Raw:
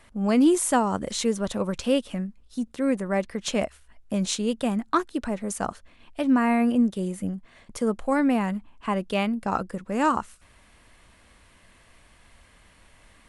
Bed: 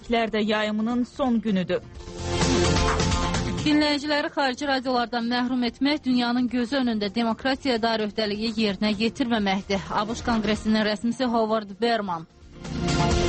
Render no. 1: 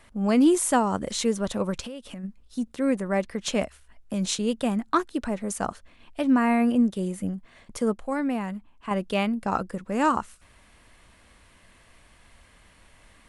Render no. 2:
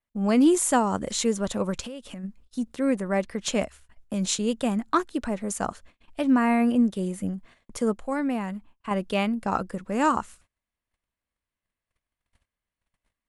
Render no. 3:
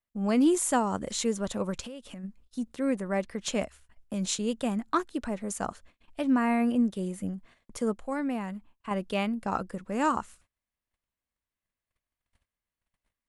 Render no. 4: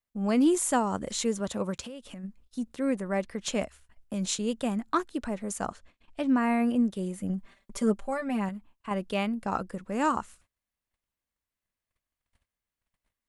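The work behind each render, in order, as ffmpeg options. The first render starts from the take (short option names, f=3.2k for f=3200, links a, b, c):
-filter_complex "[0:a]asplit=3[a][b][c];[a]afade=t=out:st=1.8:d=0.02[d];[b]acompressor=threshold=-33dB:ratio=16:attack=3.2:release=140:knee=1:detection=peak,afade=t=in:st=1.8:d=0.02,afade=t=out:st=2.23:d=0.02[e];[c]afade=t=in:st=2.23:d=0.02[f];[d][e][f]amix=inputs=3:normalize=0,asettb=1/sr,asplit=3[g][h][i];[g]atrim=end=3.624[j];[h]atrim=start=3.62:end=4.39,asetpts=PTS-STARTPTS,afade=t=in:d=0.004:c=qsin,afade=t=out:st=0.766:d=0.004:c=qsin,acrossover=split=190|3000[k][l][m];[l]acompressor=threshold=-28dB:ratio=6:attack=3.2:release=140:knee=2.83:detection=peak[n];[k][n][m]amix=inputs=3:normalize=0[o];[i]atrim=start=4.386[p];[j][o]acrossfade=d=0.004:c1=hsin:c2=qsin[q];[q][p]acrossfade=d=0.004:c1=qsin:c2=hsin,asplit=3[r][s][t];[r]atrim=end=7.932[u];[s]atrim=start=7.928:end=8.912,asetpts=PTS-STARTPTS,volume=-5dB[v];[t]atrim=start=8.908[w];[u][v]acrossfade=d=0.004:c1=hsin:c2=hsin[x];[x][w]acrossfade=d=0.004:c1=hsin:c2=hsin"
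-af "agate=range=-34dB:threshold=-49dB:ratio=16:detection=peak,adynamicequalizer=threshold=0.00224:dfrequency=7100:dqfactor=6.3:tfrequency=7100:tqfactor=6.3:attack=5:release=100:ratio=0.375:range=3:mode=boostabove:tftype=bell"
-af "volume=-4dB"
-filter_complex "[0:a]asettb=1/sr,asplit=3[a][b][c];[a]atrim=end=1.404[d];[b]atrim=start=1.4:end=1.9,asetpts=PTS-STARTPTS,afade=t=in:d=0.004:c=qsin,afade=t=out:st=0.496:d=0.004:c=qsin,highpass=56[e];[c]atrim=start=1.896[f];[d][e]acrossfade=d=0.004:c1=hsin:c2=qsin[g];[g][f]acrossfade=d=0.004:c1=qsin:c2=hsin,asettb=1/sr,asplit=3[h][i][j];[h]atrim=end=5.704[k];[i]atrim=start=5.7:end=6.43,asetpts=PTS-STARTPTS,afade=t=in:d=0.004:c=qsin,afade=t=out:st=0.726:d=0.004:c=qsin,lowpass=8.8k[l];[j]atrim=start=6.426[m];[k][l]acrossfade=d=0.004:c1=hsin:c2=qsin[n];[n][m]acrossfade=d=0.004:c1=qsin:c2=hsin,asettb=1/sr,asplit=3[o][p][q];[o]atrim=end=7.294[r];[p]atrim=start=7.29:end=8.49,asetpts=PTS-STARTPTS,afade=t=in:d=0.004:c=qsin,afade=t=out:st=1.196:d=0.004:c=qsin,aecho=1:1:5.1:0.94,atrim=end_sample=52920[s];[q]atrim=start=8.486[t];[r][s]acrossfade=d=0.004:c1=hsin:c2=qsin[u];[u][t]acrossfade=d=0.004:c1=qsin:c2=hsin"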